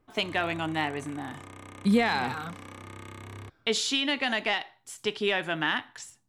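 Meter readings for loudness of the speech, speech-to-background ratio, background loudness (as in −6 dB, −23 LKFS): −28.5 LKFS, 17.0 dB, −45.5 LKFS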